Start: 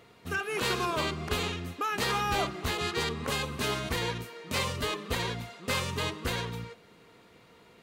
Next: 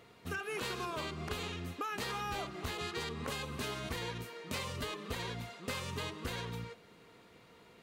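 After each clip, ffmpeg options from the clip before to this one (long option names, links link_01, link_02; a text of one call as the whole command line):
ffmpeg -i in.wav -af "acompressor=threshold=-33dB:ratio=6,volume=-2.5dB" out.wav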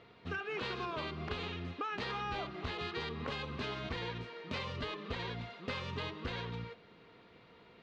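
ffmpeg -i in.wav -af "lowpass=frequency=4400:width=0.5412,lowpass=frequency=4400:width=1.3066" out.wav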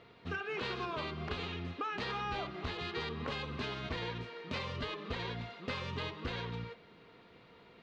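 ffmpeg -i in.wav -af "bandreject=frequency=104.9:width_type=h:width=4,bandreject=frequency=209.8:width_type=h:width=4,bandreject=frequency=314.7:width_type=h:width=4,bandreject=frequency=419.6:width_type=h:width=4,bandreject=frequency=524.5:width_type=h:width=4,bandreject=frequency=629.4:width_type=h:width=4,bandreject=frequency=734.3:width_type=h:width=4,bandreject=frequency=839.2:width_type=h:width=4,bandreject=frequency=944.1:width_type=h:width=4,bandreject=frequency=1049:width_type=h:width=4,bandreject=frequency=1153.9:width_type=h:width=4,bandreject=frequency=1258.8:width_type=h:width=4,bandreject=frequency=1363.7:width_type=h:width=4,bandreject=frequency=1468.6:width_type=h:width=4,bandreject=frequency=1573.5:width_type=h:width=4,bandreject=frequency=1678.4:width_type=h:width=4,bandreject=frequency=1783.3:width_type=h:width=4,bandreject=frequency=1888.2:width_type=h:width=4,bandreject=frequency=1993.1:width_type=h:width=4,bandreject=frequency=2098:width_type=h:width=4,bandreject=frequency=2202.9:width_type=h:width=4,bandreject=frequency=2307.8:width_type=h:width=4,bandreject=frequency=2412.7:width_type=h:width=4,bandreject=frequency=2517.6:width_type=h:width=4,bandreject=frequency=2622.5:width_type=h:width=4,bandreject=frequency=2727.4:width_type=h:width=4,bandreject=frequency=2832.3:width_type=h:width=4,bandreject=frequency=2937.2:width_type=h:width=4,bandreject=frequency=3042.1:width_type=h:width=4,bandreject=frequency=3147:width_type=h:width=4,bandreject=frequency=3251.9:width_type=h:width=4,bandreject=frequency=3356.8:width_type=h:width=4,bandreject=frequency=3461.7:width_type=h:width=4,bandreject=frequency=3566.6:width_type=h:width=4,bandreject=frequency=3671.5:width_type=h:width=4,volume=1dB" out.wav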